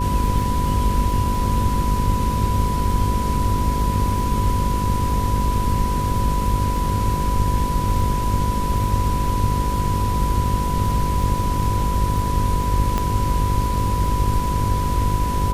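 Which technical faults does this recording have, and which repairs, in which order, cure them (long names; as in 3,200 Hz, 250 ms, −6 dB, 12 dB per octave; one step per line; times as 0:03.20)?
mains buzz 50 Hz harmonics 11 −25 dBFS
surface crackle 23 per second −27 dBFS
whistle 990 Hz −24 dBFS
0:12.98: click −9 dBFS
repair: click removal
hum removal 50 Hz, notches 11
notch filter 990 Hz, Q 30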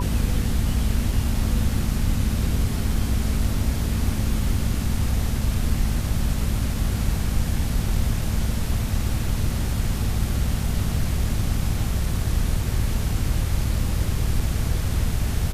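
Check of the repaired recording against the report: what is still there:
0:12.98: click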